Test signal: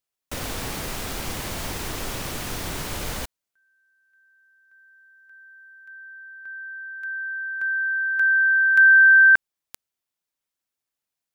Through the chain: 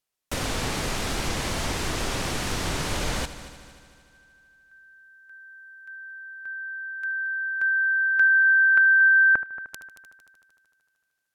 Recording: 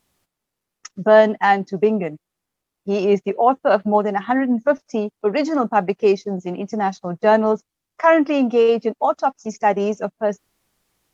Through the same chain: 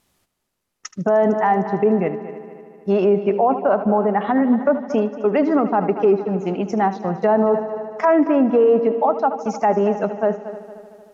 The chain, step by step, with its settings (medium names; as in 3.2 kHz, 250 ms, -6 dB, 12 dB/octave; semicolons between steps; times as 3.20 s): low-pass that closes with the level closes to 1.2 kHz, closed at -14 dBFS; multi-head delay 76 ms, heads first and third, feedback 62%, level -16 dB; loudness maximiser +10 dB; trim -7 dB